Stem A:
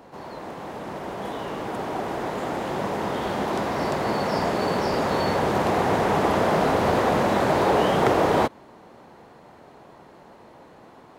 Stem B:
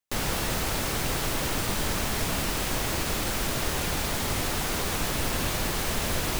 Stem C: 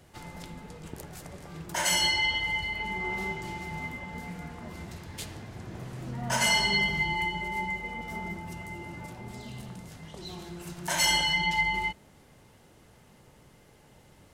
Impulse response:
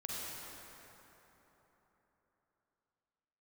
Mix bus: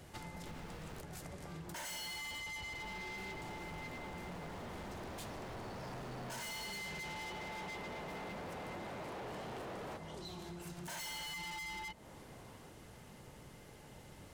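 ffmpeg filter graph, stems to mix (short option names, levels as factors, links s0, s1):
-filter_complex "[0:a]adelay=1500,volume=0.237,asplit=2[s0][s1];[s1]volume=0.2[s2];[1:a]lowpass=f=2100:p=1,alimiter=limit=0.0668:level=0:latency=1:release=37,adelay=350,volume=0.316,asplit=3[s3][s4][s5];[s3]atrim=end=1.01,asetpts=PTS-STARTPTS,afade=t=out:st=1.006:d=0.004:c=hsin[s6];[s4]atrim=start=1.01:end=2.72,asetpts=PTS-STARTPTS,volume=0[s7];[s5]atrim=start=2.72,asetpts=PTS-STARTPTS,afade=t=in:d=0.004:c=hsin[s8];[s6][s7][s8]concat=n=3:v=0:a=1[s9];[2:a]volume=1.19[s10];[3:a]atrim=start_sample=2205[s11];[s2][s11]afir=irnorm=-1:irlink=0[s12];[s0][s9][s10][s12]amix=inputs=4:normalize=0,volume=44.7,asoftclip=hard,volume=0.0224,acompressor=threshold=0.00631:ratio=12"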